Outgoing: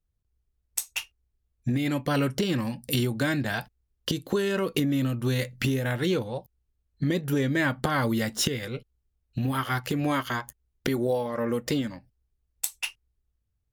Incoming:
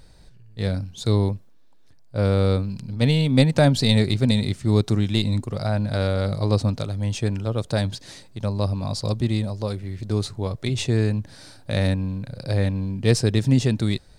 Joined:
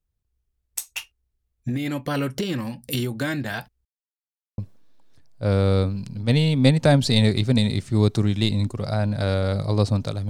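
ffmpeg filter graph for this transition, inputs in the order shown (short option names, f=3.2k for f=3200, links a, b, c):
-filter_complex "[0:a]apad=whole_dur=10.29,atrim=end=10.29,asplit=2[a][b];[a]atrim=end=3.85,asetpts=PTS-STARTPTS,afade=t=out:st=3.846:d=0.004:c=hsin[c];[b]atrim=start=3.85:end=4.58,asetpts=PTS-STARTPTS,volume=0[d];[1:a]atrim=start=1.31:end=7.02,asetpts=PTS-STARTPTS,afade=t=in:d=0.004:c=hsin[e];[c][d][e]concat=n=3:v=0:a=1"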